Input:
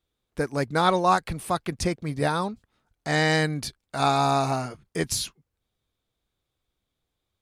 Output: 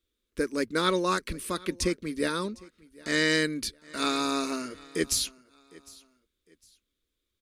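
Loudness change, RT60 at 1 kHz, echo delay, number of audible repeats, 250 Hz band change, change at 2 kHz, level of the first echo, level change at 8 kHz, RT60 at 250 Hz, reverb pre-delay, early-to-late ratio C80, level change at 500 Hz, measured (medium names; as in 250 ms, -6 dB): -3.5 dB, no reverb, 756 ms, 2, -1.0 dB, -1.5 dB, -23.0 dB, +1.0 dB, no reverb, no reverb, no reverb, -3.5 dB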